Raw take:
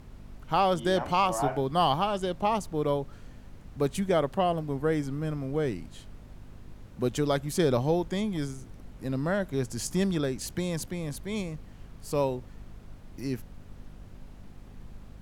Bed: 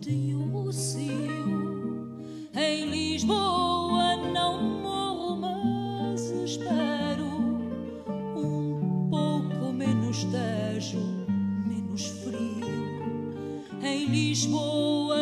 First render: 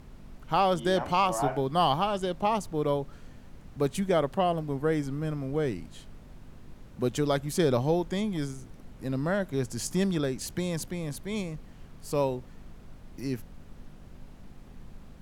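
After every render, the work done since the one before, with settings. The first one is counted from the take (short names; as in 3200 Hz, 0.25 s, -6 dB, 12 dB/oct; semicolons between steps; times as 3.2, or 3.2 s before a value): de-hum 50 Hz, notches 2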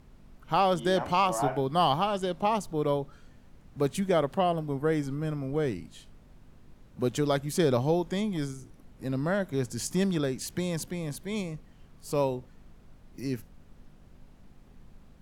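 noise print and reduce 6 dB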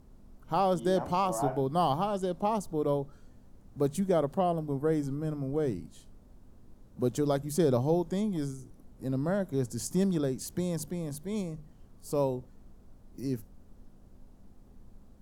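bell 2400 Hz -11.5 dB 1.9 oct; notches 50/100/150 Hz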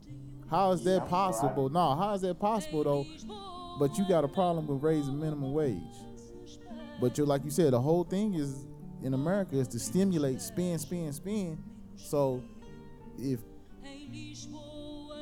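add bed -18.5 dB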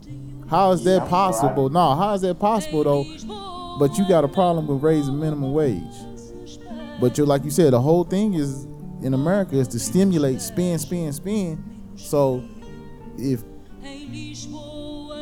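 gain +10 dB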